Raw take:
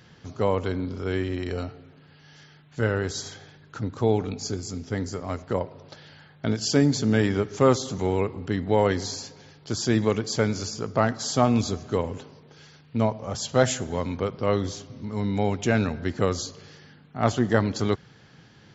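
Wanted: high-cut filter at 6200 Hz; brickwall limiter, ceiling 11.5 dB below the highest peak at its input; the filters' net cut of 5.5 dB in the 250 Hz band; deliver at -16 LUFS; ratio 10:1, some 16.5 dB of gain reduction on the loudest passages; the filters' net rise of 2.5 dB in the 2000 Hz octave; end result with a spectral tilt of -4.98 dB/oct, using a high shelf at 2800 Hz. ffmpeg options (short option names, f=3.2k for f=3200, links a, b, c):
-af "lowpass=6.2k,equalizer=f=250:t=o:g=-7,equalizer=f=2k:t=o:g=6,highshelf=f=2.8k:g=-7,acompressor=threshold=-33dB:ratio=10,volume=25.5dB,alimiter=limit=-3dB:level=0:latency=1"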